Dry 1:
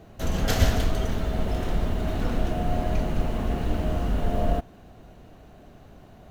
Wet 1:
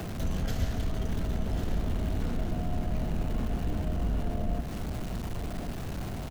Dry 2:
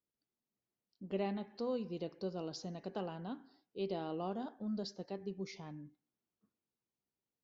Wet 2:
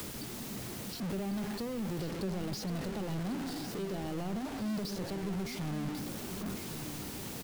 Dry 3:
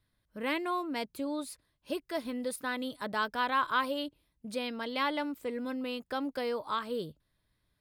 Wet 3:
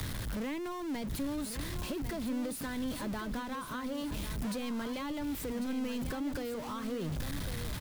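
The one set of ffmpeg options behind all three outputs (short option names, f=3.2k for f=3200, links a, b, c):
-filter_complex "[0:a]aeval=exprs='val(0)+0.5*0.0376*sgn(val(0))':c=same,acrossover=split=100|260[a][b][c];[a]acompressor=threshold=-29dB:ratio=4[d];[b]acompressor=threshold=-35dB:ratio=4[e];[c]acompressor=threshold=-42dB:ratio=4[f];[d][e][f]amix=inputs=3:normalize=0,aecho=1:1:1098:0.335"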